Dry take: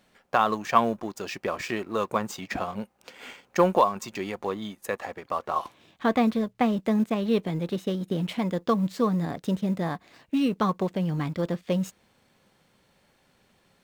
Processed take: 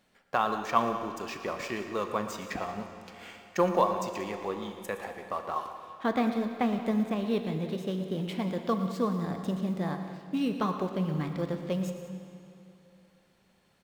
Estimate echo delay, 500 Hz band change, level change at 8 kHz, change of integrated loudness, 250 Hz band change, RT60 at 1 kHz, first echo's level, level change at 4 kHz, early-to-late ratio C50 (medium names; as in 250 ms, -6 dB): 117 ms, -4.0 dB, -4.0 dB, -4.0 dB, -4.0 dB, 2.8 s, -14.0 dB, -4.0 dB, 6.5 dB